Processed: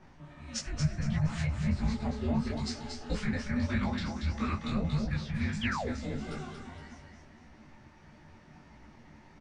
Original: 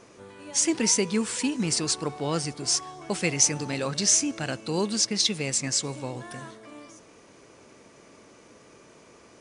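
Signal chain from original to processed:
frequency shifter −360 Hz
brickwall limiter −18 dBFS, peak gain reduction 11 dB
low-pass that shuts in the quiet parts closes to 2,200 Hz, open at −26.5 dBFS
mains-hum notches 60/120/180 Hz
treble cut that deepens with the level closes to 990 Hz, closed at −23.5 dBFS
high-shelf EQ 6,500 Hz +8 dB
double-tracking delay 15 ms −4 dB
phase-vocoder pitch shift with formants kept +2 semitones
parametric band 210 Hz +5.5 dB 0.32 octaves
on a send: repeating echo 233 ms, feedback 35%, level −5 dB
on the sum: sound drawn into the spectrogram fall, 0:05.61–0:05.90, 310–3,500 Hz −32 dBFS
micro pitch shift up and down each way 55 cents

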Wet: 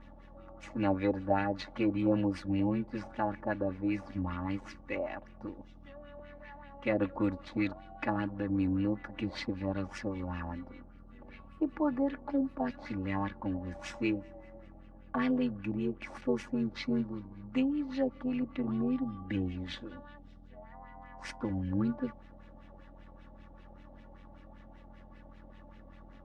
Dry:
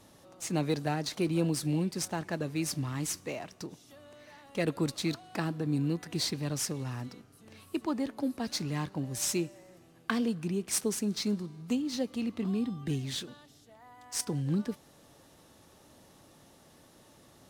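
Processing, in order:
auto-filter low-pass sine 7.7 Hz 700–2,500 Hz
hum with harmonics 60 Hz, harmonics 3, −52 dBFS −4 dB per octave
time stretch by overlap-add 1.5×, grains 21 ms

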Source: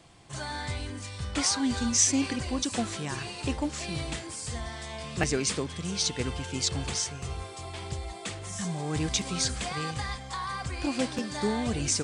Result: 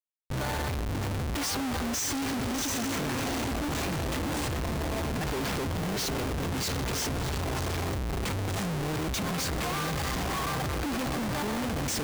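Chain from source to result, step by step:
0:04.70–0:05.55: variable-slope delta modulation 32 kbit/s
0:09.24–0:09.84: parametric band 1,100 Hz +8 dB 0.41 octaves
feedback delay with all-pass diffusion 701 ms, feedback 40%, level −6.5 dB
comparator with hysteresis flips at −35 dBFS

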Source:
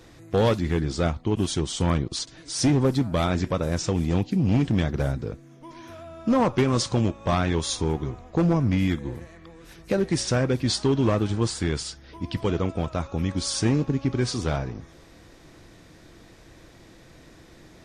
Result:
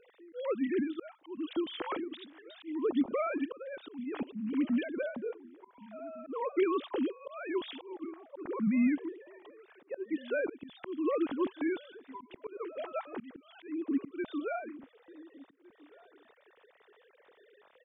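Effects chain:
three sine waves on the formant tracks
slap from a distant wall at 250 metres, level −22 dB
volume swells 328 ms
level −7 dB

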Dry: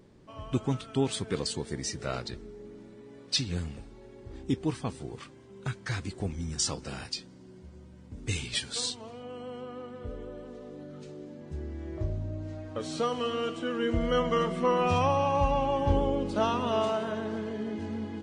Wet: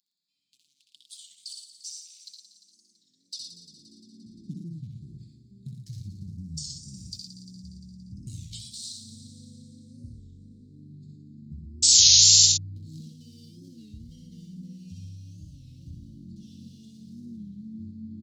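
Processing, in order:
adaptive Wiener filter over 15 samples
downward compressor 10 to 1, threshold −39 dBFS, peak gain reduction 19.5 dB
high-pass filter sweep 2,600 Hz → 81 Hz, 0:02.08–0:05.11
delay with a high-pass on its return 174 ms, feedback 64%, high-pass 3,500 Hz, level −10 dB
sound drawn into the spectrogram noise, 0:11.83–0:12.46, 1,200–7,500 Hz −19 dBFS
elliptic band-stop filter 220–4,200 Hz, stop band 80 dB
high-shelf EQ 4,900 Hz +6 dB
comb filter 6 ms, depth 40%
multi-tap delay 64/82/114 ms −4/−9/−6 dB
wow of a warped record 33 1/3 rpm, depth 160 cents

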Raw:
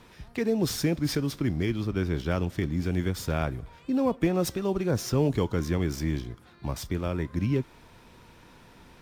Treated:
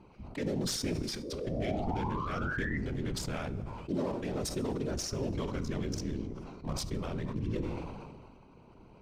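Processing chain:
adaptive Wiener filter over 25 samples
Bessel low-pass filter 8,000 Hz, order 2
high-shelf EQ 2,100 Hz +9.5 dB
brickwall limiter −23.5 dBFS, peak gain reduction 11 dB
0:01.02–0:01.47: compressor whose output falls as the input rises −43 dBFS, ratio −1
0:01.23–0:02.78: sound drawn into the spectrogram rise 380–2,000 Hz −37 dBFS
random phases in short frames
coupled-rooms reverb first 0.79 s, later 2.8 s, DRR 13 dB
level that may fall only so fast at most 31 dB per second
level −3 dB

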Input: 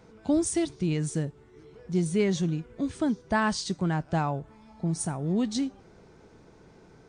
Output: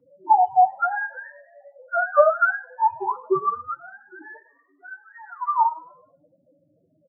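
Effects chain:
frequency axis turned over on the octave scale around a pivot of 500 Hz
low-pass filter 4,500 Hz 12 dB per octave
low-shelf EQ 360 Hz −9 dB
low-pass that shuts in the quiet parts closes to 440 Hz, open at −27.5 dBFS
in parallel at −3.5 dB: wrap-around overflow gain 31 dB
0:03.80–0:05.46: on the sum: tuned comb filter 850 Hz, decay 0.16 s, harmonics all, mix 70%
spectral peaks only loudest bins 2
echo with shifted repeats 103 ms, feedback 44%, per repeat +38 Hz, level −14.5 dB
convolution reverb RT60 0.30 s, pre-delay 3 ms, DRR 6 dB
expander for the loud parts 1.5 to 1, over −33 dBFS
level +3.5 dB

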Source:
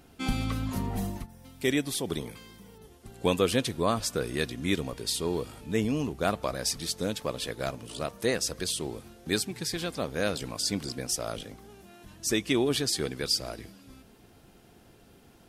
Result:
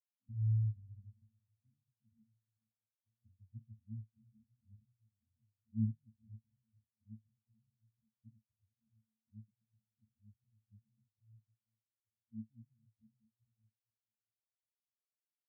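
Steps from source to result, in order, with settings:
inverse Chebyshev band-stop filter 670–1,600 Hz, stop band 80 dB
parametric band 230 Hz +4 dB 0.39 octaves
resonances in every octave A, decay 0.23 s
on a send: repeating echo 439 ms, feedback 44%, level −13.5 dB
on the sum: every bin expanded away from the loudest bin 2.5 to 1
level +2.5 dB

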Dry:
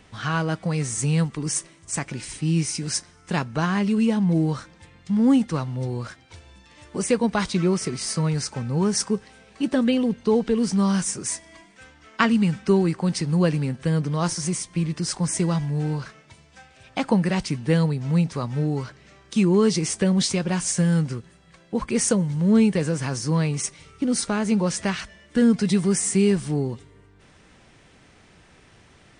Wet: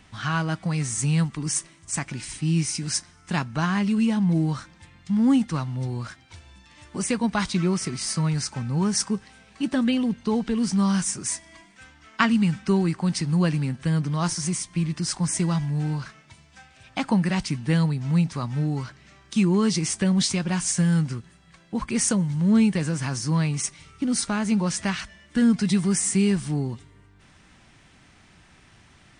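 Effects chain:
parametric band 470 Hz −9 dB 0.73 octaves

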